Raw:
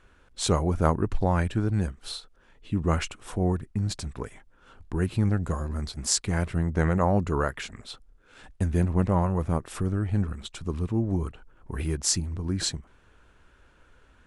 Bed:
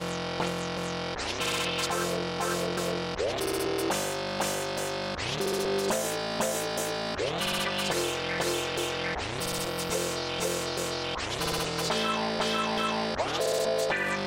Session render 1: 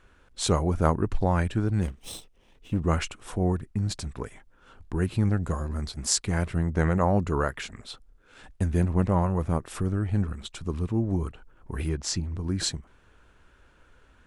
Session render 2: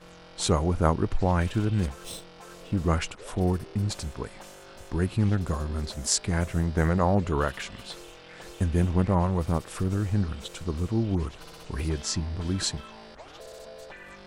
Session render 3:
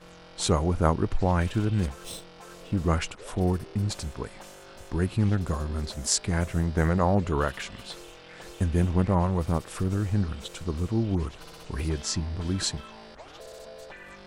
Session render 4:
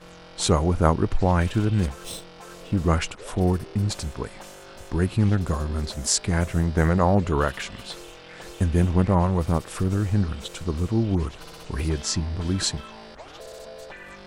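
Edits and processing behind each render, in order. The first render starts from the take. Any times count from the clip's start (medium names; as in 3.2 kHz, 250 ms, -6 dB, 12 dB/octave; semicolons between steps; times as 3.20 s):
1.82–2.80 s: comb filter that takes the minimum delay 0.33 ms; 11.89–12.35 s: distance through air 85 m
add bed -17 dB
no audible change
trim +3.5 dB; peak limiter -3 dBFS, peak gain reduction 2 dB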